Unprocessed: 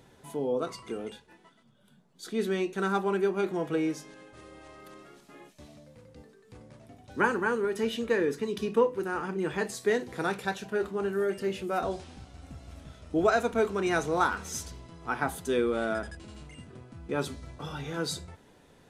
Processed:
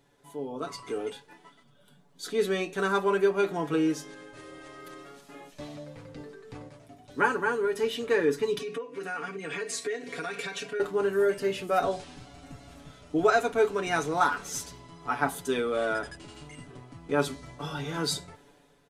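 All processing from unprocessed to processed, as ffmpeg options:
-filter_complex "[0:a]asettb=1/sr,asplit=3[s0][s1][s2];[s0]atrim=end=5.524[s3];[s1]atrim=start=5.52:end=6.69,asetpts=PTS-STARTPTS,afade=t=in:d=0.004:c=qsin,afade=t=out:st=1.166:d=0.004:c=qsin,lowpass=f=4000:p=1,acontrast=63[s4];[s2]atrim=start=6.686[s5];[s3][s4]acrossfade=d=0.004:c1=hsin:c2=qsin[s6];[s6][s5]acrossfade=d=0.004:c1=qsin:c2=hsin,asettb=1/sr,asplit=3[s7][s8][s9];[s7]atrim=end=8.594[s10];[s8]atrim=start=8.59:end=10.8,asetpts=PTS-STARTPTS,afade=t=in:d=0.004:c=qsin,afade=t=out:st=2.206:d=0.004:c=qsin,aecho=1:1:4.3:0.74,atrim=end_sample=97461,acompressor=threshold=0.0251:ratio=16:attack=3.2:release=140:knee=1:detection=peak,highpass=130,equalizer=f=210:t=q:w=4:g=-8,equalizer=f=900:t=q:w=4:g=-10,equalizer=f=2300:t=q:w=4:g=7,lowpass=f=10000:w=0.5412,lowpass=f=10000:w=1.3066[s11];[s9]atrim=start=10.796[s12];[s10][s11]acrossfade=d=0.004:c1=hsin:c2=qsin[s13];[s13][s12]acrossfade=d=0.004:c1=qsin:c2=hsin,equalizer=f=110:t=o:w=2.1:g=-5,aecho=1:1:7:0.7,dynaudnorm=f=190:g=7:m=3.76,volume=0.376"

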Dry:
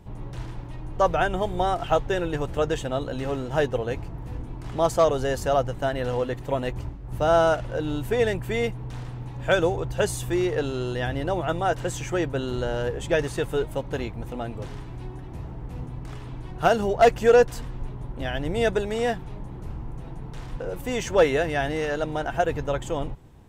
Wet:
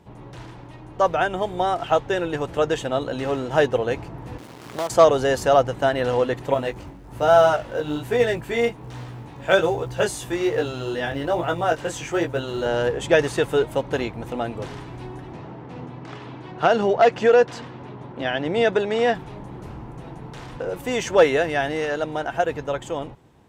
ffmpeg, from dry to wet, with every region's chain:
-filter_complex "[0:a]asettb=1/sr,asplit=3[s0][s1][s2];[s0]atrim=end=4.384[s3];[s1]atrim=start=4.38:end=4.9,asetpts=PTS-STARTPTS,afade=t=in:d=0.004:c=qsin,afade=t=out:st=0.516:d=0.004:c=qsin,highpass=130,acrusher=bits=5:dc=4:mix=0:aa=0.000001,acompressor=threshold=0.0355:ratio=4:attack=3.2:release=140:knee=1:detection=peak[s4];[s2]atrim=start=4.896[s5];[s3][s4]acrossfade=d=0.004:c1=hsin:c2=qsin[s6];[s6][s5]acrossfade=d=0.004:c1=qsin:c2=hsin,asettb=1/sr,asplit=3[s7][s8][s9];[s7]atrim=end=6.544[s10];[s8]atrim=start=6.54:end=12.66,asetpts=PTS-STARTPTS,afade=t=in:d=0.004:c=qsin,afade=t=out:st=6.116:d=0.004:c=qsin,flanger=delay=16.5:depth=4.9:speed=1.2,acrusher=bits=9:mode=log:mix=0:aa=0.000001[s11];[s9]atrim=start=12.656[s12];[s10][s11]acrossfade=d=0.004:c1=hsin:c2=qsin[s13];[s13][s12]acrossfade=d=0.004:c1=qsin:c2=hsin,asettb=1/sr,asplit=3[s14][s15][s16];[s14]atrim=end=15.334[s17];[s15]atrim=start=15.33:end=19.15,asetpts=PTS-STARTPTS,afade=t=in:d=0.004:c=qsin,afade=t=out:st=3.816:d=0.004:c=qsin,highpass=130,lowpass=5100,acompressor=threshold=0.112:ratio=2.5:attack=3.2:release=140:knee=1:detection=peak[s18];[s16]atrim=start=19.146[s19];[s17][s18]acrossfade=d=0.004:c1=hsin:c2=qsin[s20];[s20][s19]acrossfade=d=0.004:c1=qsin:c2=hsin,highpass=f=230:p=1,highshelf=f=9900:g=-8,dynaudnorm=f=430:g=13:m=1.78,volume=1.26"

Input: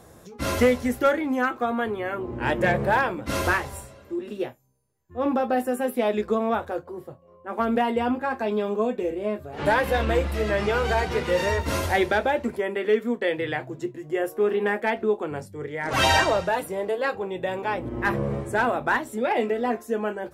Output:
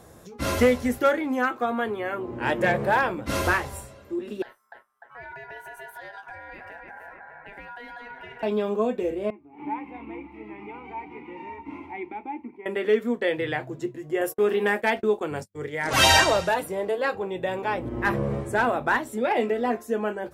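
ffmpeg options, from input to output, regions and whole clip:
-filter_complex "[0:a]asettb=1/sr,asplit=3[s0][s1][s2];[s0]atrim=end=0.984[s3];[s1]atrim=start=0.98:end=3.03,asetpts=PTS-STARTPTS,afade=t=in:d=0.004:c=qsin,afade=t=out:st=2.046:d=0.004:c=qsin,highpass=83,lowshelf=f=180:g=-4.5[s4];[s2]atrim=start=3.026[s5];[s3][s4]acrossfade=d=0.004:c1=hsin:c2=qsin[s6];[s6][s5]acrossfade=d=0.004:c1=qsin:c2=hsin,asettb=1/sr,asplit=3[s7][s8][s9];[s7]atrim=end=4.424[s10];[s8]atrim=start=4.42:end=8.43,asetpts=PTS-STARTPTS,afade=t=in:d=0.004:c=qsin,afade=t=out:st=4.006:d=0.004:c=qsin,asplit=2[s11][s12];[s12]adelay=299,lowpass=f=820:p=1,volume=0.355,asplit=2[s13][s14];[s14]adelay=299,lowpass=f=820:p=1,volume=0.51,asplit=2[s15][s16];[s16]adelay=299,lowpass=f=820:p=1,volume=0.51,asplit=2[s17][s18];[s18]adelay=299,lowpass=f=820:p=1,volume=0.51,asplit=2[s19][s20];[s20]adelay=299,lowpass=f=820:p=1,volume=0.51,asplit=2[s21][s22];[s22]adelay=299,lowpass=f=820:p=1,volume=0.51[s23];[s11][s13][s15][s17][s19][s21][s23]amix=inputs=7:normalize=0,atrim=end_sample=176841,acompressor=threshold=0.0158:ratio=6:attack=3.2:release=140:knee=1:detection=peak,aeval=exprs='val(0)*sin(2*PI*1200*n/s)':c=same[s24];[s9]atrim=start=8.426[s25];[s10][s24]acrossfade=d=0.004:c1=hsin:c2=qsin[s26];[s26][s25]acrossfade=d=0.004:c1=qsin:c2=hsin,asettb=1/sr,asplit=3[s27][s28][s29];[s27]atrim=end=9.304[s30];[s28]atrim=start=9.3:end=12.66,asetpts=PTS-STARTPTS,afade=t=in:d=0.004:c=qsin,afade=t=out:st=3.356:d=0.004:c=qsin,asplit=3[s31][s32][s33];[s31]bandpass=f=300:t=q:w=8,volume=1[s34];[s32]bandpass=f=870:t=q:w=8,volume=0.501[s35];[s33]bandpass=f=2240:t=q:w=8,volume=0.355[s36];[s34][s35][s36]amix=inputs=3:normalize=0,highshelf=f=3100:t=q:w=1.5:g=-10.5[s37];[s29]atrim=start=12.656[s38];[s30][s37]acrossfade=d=0.004:c1=hsin:c2=qsin[s39];[s39][s38]acrossfade=d=0.004:c1=qsin:c2=hsin,asettb=1/sr,asplit=3[s40][s41][s42];[s40]atrim=end=14.214[s43];[s41]atrim=start=14.21:end=16.54,asetpts=PTS-STARTPTS,afade=t=in:d=0.004:c=qsin,afade=t=out:st=2.326:d=0.004:c=qsin,highshelf=f=2900:g=8.5,agate=range=0.01:threshold=0.0141:ratio=16:release=100:detection=peak[s44];[s42]atrim=start=16.536[s45];[s43][s44]acrossfade=d=0.004:c1=hsin:c2=qsin[s46];[s46][s45]acrossfade=d=0.004:c1=qsin:c2=hsin"

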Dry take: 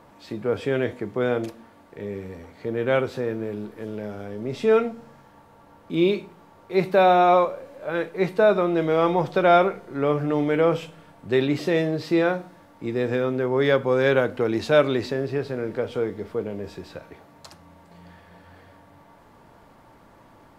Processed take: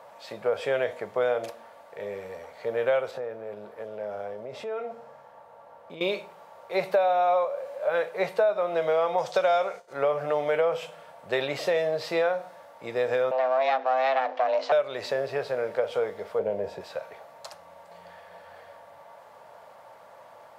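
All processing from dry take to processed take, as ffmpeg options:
-filter_complex "[0:a]asettb=1/sr,asplit=3[s0][s1][s2];[s0]atrim=end=3.114[s3];[s1]atrim=start=3.11:end=6.01,asetpts=PTS-STARTPTS,afade=t=in:d=0.004:c=qsin,afade=t=out:st=2.896:d=0.004:c=qsin,highshelf=f=2200:g=-9,acompressor=threshold=0.0355:ratio=6:attack=3.2:release=140:knee=1:detection=peak[s4];[s2]atrim=start=6.006[s5];[s3][s4]acrossfade=d=0.004:c1=hsin:c2=qsin[s6];[s6][s5]acrossfade=d=0.004:c1=qsin:c2=hsin,asettb=1/sr,asplit=3[s7][s8][s9];[s7]atrim=end=9.184[s10];[s8]atrim=start=9.18:end=9.93,asetpts=PTS-STARTPTS,afade=t=in:d=0.004:c=qsin,afade=t=out:st=0.746:d=0.004:c=qsin,equalizer=f=6500:t=o:w=1.5:g=13.5,agate=range=0.0224:threshold=0.0178:ratio=3:release=100:detection=peak[s11];[s9]atrim=start=9.926[s12];[s10][s11]acrossfade=d=0.004:c1=hsin:c2=qsin[s13];[s13][s12]acrossfade=d=0.004:c1=qsin:c2=hsin,asettb=1/sr,asplit=3[s14][s15][s16];[s14]atrim=end=13.314[s17];[s15]atrim=start=13.31:end=14.72,asetpts=PTS-STARTPTS,afade=t=in:d=0.004:c=qsin,afade=t=out:st=1.406:d=0.004:c=qsin,aeval=exprs='if(lt(val(0),0),0.251*val(0),val(0))':c=same,lowpass=f=5200:w=0.5412,lowpass=f=5200:w=1.3066,afreqshift=260[s18];[s16]atrim=start=14.716[s19];[s17][s18]acrossfade=d=0.004:c1=hsin:c2=qsin[s20];[s20][s19]acrossfade=d=0.004:c1=qsin:c2=hsin,asettb=1/sr,asplit=3[s21][s22][s23];[s21]atrim=end=16.394[s24];[s22]atrim=start=16.39:end=16.81,asetpts=PTS-STARTPTS,afade=t=in:d=0.004:c=qsin,afade=t=out:st=0.416:d=0.004:c=qsin,tiltshelf=f=1200:g=6.5,bandreject=f=1200:w=5.9[s25];[s23]atrim=start=16.806[s26];[s24][s25]acrossfade=d=0.004:c1=hsin:c2=qsin[s27];[s27][s26]acrossfade=d=0.004:c1=qsin:c2=hsin,highpass=110,lowshelf=f=420:t=q:w=3:g=-10.5,acompressor=threshold=0.0794:ratio=6,volume=1.12"

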